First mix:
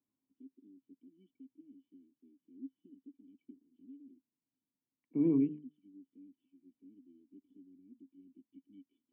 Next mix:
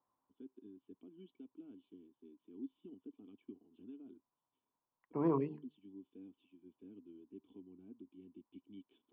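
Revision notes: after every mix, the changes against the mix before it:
second voice -11.0 dB; master: remove cascade formant filter i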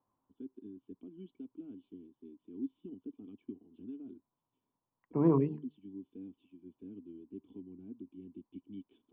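master: add bass shelf 350 Hz +11.5 dB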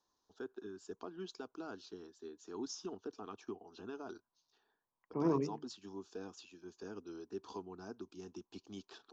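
first voice: remove cascade formant filter i; master: add bass shelf 350 Hz -11.5 dB

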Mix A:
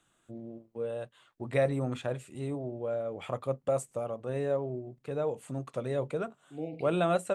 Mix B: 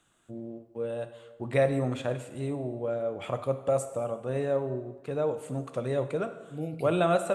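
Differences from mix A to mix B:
first voice: send on; second voice: remove band-pass 250–3500 Hz

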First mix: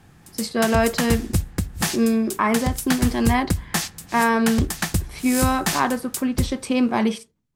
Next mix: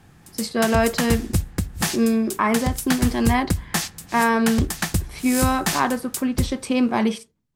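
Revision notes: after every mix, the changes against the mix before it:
no change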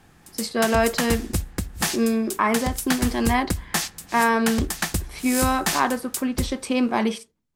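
master: add peaking EQ 120 Hz -7 dB 1.5 oct

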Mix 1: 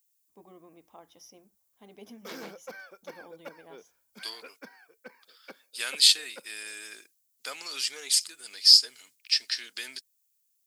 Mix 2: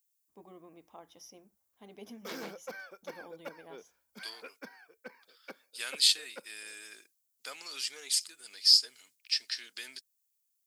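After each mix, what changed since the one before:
second voice -5.5 dB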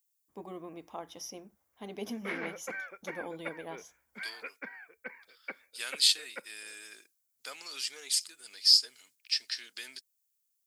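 first voice +9.5 dB; background: add resonant low-pass 2.1 kHz, resonance Q 4.4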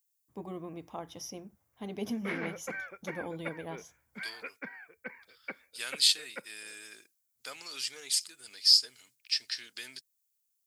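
master: add peaking EQ 110 Hz +14 dB 1.4 oct

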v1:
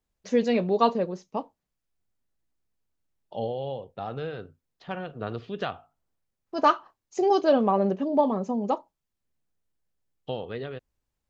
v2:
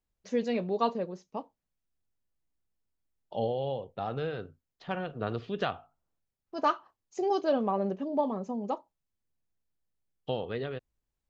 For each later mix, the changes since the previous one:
first voice -6.5 dB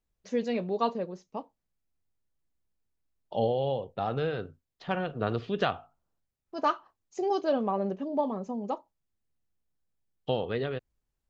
second voice +3.5 dB

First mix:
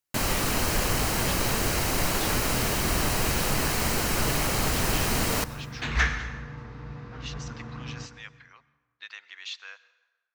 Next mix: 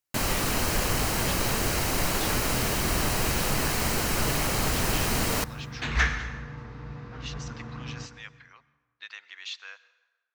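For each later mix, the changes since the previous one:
first sound: send -6.5 dB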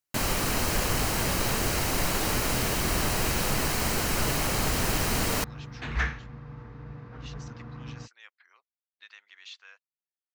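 speech -7.0 dB; second sound: add treble shelf 3 kHz -10 dB; reverb: off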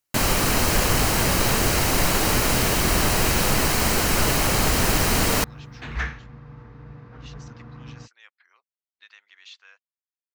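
first sound +6.5 dB

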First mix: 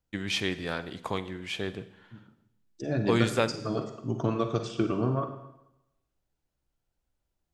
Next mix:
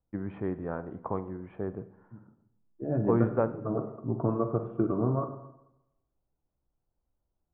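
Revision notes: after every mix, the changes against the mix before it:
master: add inverse Chebyshev low-pass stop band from 5.1 kHz, stop band 70 dB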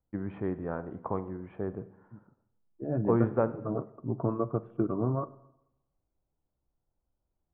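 second voice: send -11.5 dB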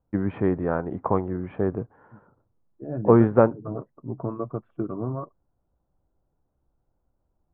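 first voice +10.5 dB; reverb: off

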